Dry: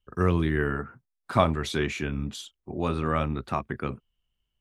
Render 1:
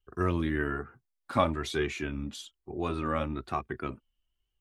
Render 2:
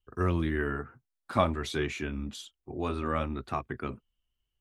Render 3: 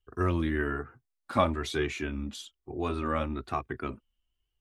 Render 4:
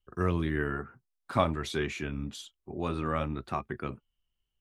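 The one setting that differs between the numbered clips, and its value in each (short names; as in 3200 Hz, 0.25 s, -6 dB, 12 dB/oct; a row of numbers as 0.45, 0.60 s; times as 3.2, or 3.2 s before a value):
flange, regen: +31, -50, -12, +77%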